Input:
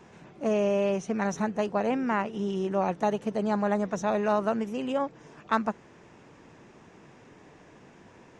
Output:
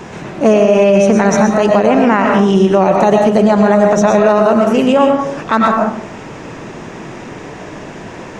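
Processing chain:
in parallel at −2 dB: downward compressor, threshold −38 dBFS, peak gain reduction 17.5 dB
on the sum: convolution reverb RT60 0.60 s, pre-delay 75 ms, DRR 3 dB
boost into a limiter +18 dB
level −1 dB

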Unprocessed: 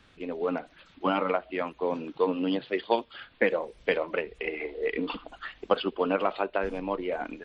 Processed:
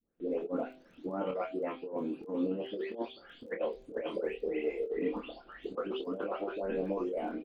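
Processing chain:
every frequency bin delayed by itself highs late, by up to 423 ms
hum removal 129.3 Hz, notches 6
noise gate with hold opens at −47 dBFS
octave-band graphic EQ 125/250/500/1,000/2,000/4,000 Hz −5/+7/+7/−5/−7/−6 dB
compressor whose output falls as the input rises −27 dBFS, ratio −0.5
surface crackle 11 per second −47 dBFS
double-tracking delay 26 ms −5 dB
level −7.5 dB

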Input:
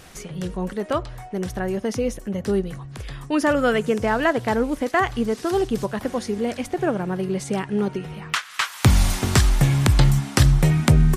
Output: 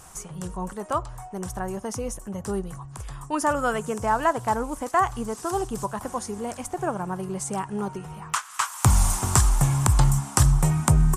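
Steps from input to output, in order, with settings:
graphic EQ with 10 bands 250 Hz −6 dB, 500 Hz −6 dB, 1,000 Hz +9 dB, 2,000 Hz −8 dB, 4,000 Hz −9 dB, 8,000 Hz +10 dB
level −2 dB

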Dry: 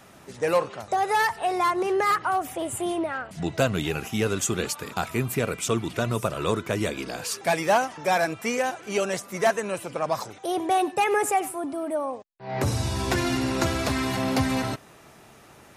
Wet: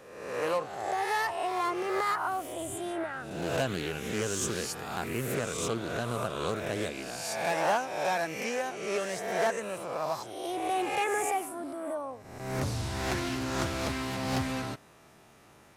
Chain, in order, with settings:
peak hold with a rise ahead of every peak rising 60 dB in 1.05 s
highs frequency-modulated by the lows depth 0.34 ms
level −9 dB

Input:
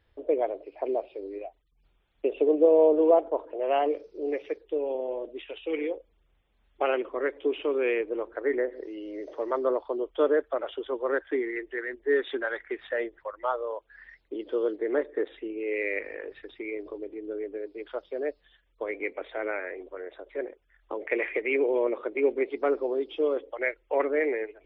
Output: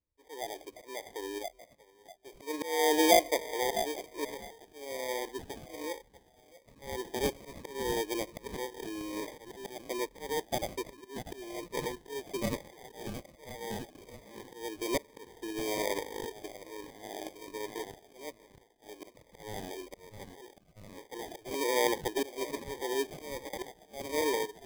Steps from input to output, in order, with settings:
noise gate with hold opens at −45 dBFS
volume swells 431 ms
on a send: echo through a band-pass that steps 641 ms, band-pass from 1,100 Hz, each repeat 0.7 octaves, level −3 dB
on the sum: gain on a spectral selection 0:10.93–0:11.16, 430–1,600 Hz −28 dB
decimation without filtering 32×
phaser whose notches keep moving one way falling 1.2 Hz

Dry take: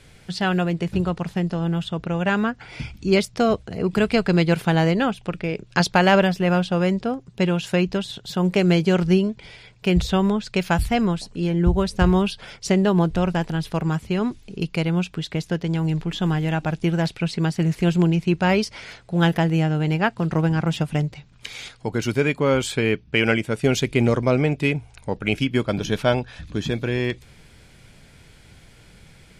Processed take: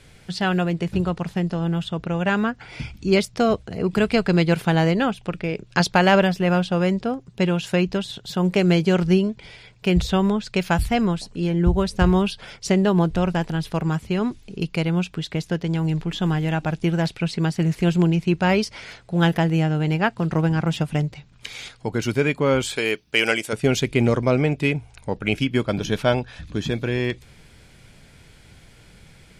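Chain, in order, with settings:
0:22.76–0:23.53: bass and treble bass −15 dB, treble +13 dB

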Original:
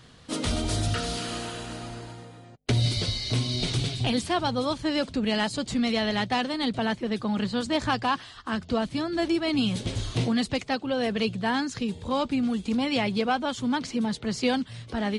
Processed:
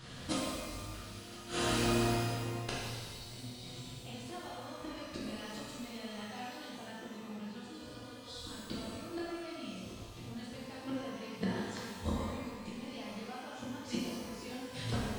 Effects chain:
gate with flip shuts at −23 dBFS, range −25 dB
healed spectral selection 0:07.67–0:08.46, 340–3,300 Hz before
reverb with rising layers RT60 1.4 s, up +12 semitones, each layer −8 dB, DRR −7 dB
level −1.5 dB

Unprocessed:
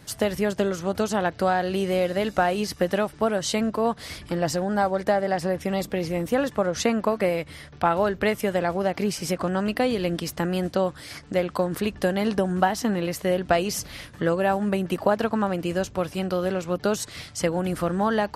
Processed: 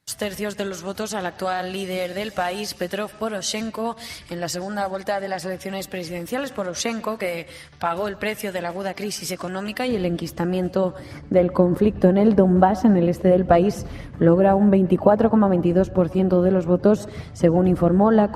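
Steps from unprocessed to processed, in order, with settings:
spectral magnitudes quantised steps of 15 dB
noise gate with hold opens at −38 dBFS
tilt shelving filter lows −4 dB, about 1,400 Hz, from 0:09.87 lows +3.5 dB, from 0:10.98 lows +10 dB
convolution reverb RT60 0.60 s, pre-delay 106 ms, DRR 18 dB

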